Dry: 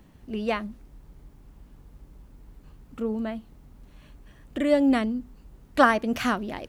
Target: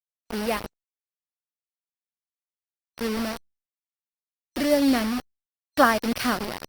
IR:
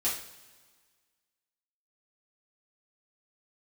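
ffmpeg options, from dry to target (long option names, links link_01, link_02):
-af "acrusher=bits=4:mix=0:aa=0.000001,superequalizer=14b=1.58:15b=0.501" -ar 48000 -c:a libopus -b:a 32k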